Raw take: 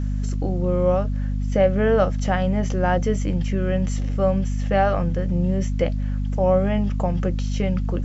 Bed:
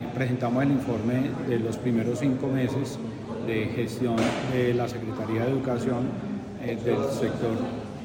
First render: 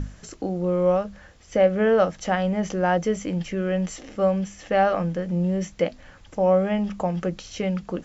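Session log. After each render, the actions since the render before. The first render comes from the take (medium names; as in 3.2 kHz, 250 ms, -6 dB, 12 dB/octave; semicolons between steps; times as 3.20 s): hum notches 50/100/150/200/250 Hz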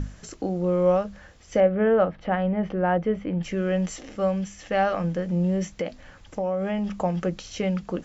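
1.60–3.43 s: distance through air 420 m; 4.17–5.04 s: peaking EQ 470 Hz -3.5 dB 2.9 oct; 5.63–6.92 s: compression 5:1, threshold -23 dBFS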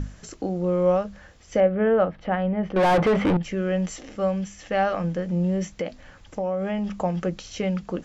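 2.76–3.37 s: overdrive pedal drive 33 dB, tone 1.6 kHz, clips at -12 dBFS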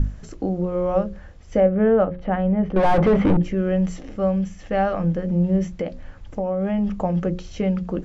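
tilt EQ -2.5 dB/octave; hum notches 60/120/180/240/300/360/420/480/540 Hz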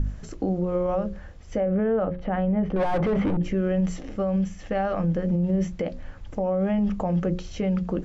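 peak limiter -17 dBFS, peak gain reduction 11 dB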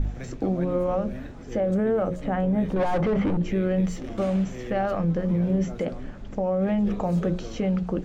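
add bed -13 dB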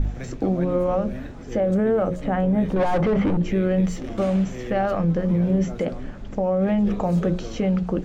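trim +3 dB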